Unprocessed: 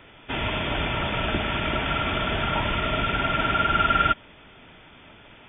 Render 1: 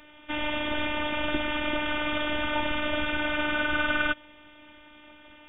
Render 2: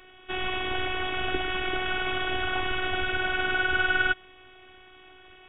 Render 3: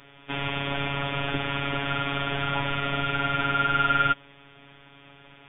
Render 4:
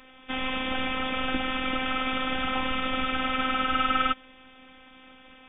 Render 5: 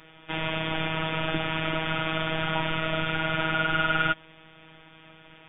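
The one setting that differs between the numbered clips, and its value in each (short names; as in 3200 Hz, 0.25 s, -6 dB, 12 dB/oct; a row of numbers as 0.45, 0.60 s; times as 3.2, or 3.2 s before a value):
robotiser, frequency: 300, 370, 140, 260, 160 Hz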